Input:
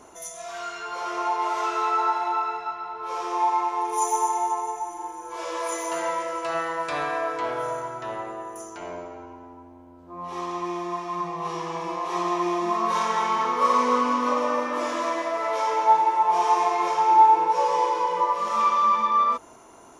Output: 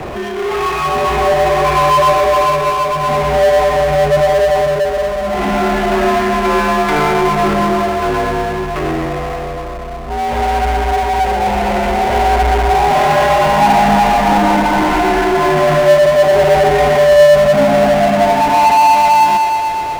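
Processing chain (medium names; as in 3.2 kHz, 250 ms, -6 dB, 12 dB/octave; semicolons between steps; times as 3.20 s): feedback echo behind a high-pass 121 ms, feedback 68%, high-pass 1.4 kHz, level -4 dB; mistuned SSB -290 Hz 310–3200 Hz; power-law waveshaper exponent 0.5; trim +4.5 dB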